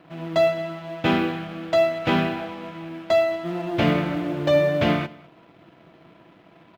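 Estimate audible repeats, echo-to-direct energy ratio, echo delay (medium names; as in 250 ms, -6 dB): 1, -23.5 dB, 208 ms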